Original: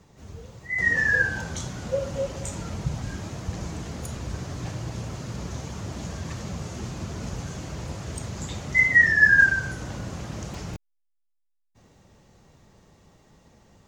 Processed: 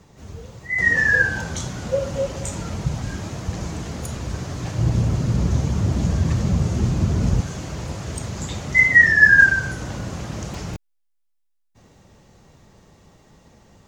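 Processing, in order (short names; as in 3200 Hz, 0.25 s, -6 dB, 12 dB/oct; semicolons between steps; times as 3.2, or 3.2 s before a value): 4.78–7.41 low shelf 340 Hz +11.5 dB; gain +4.5 dB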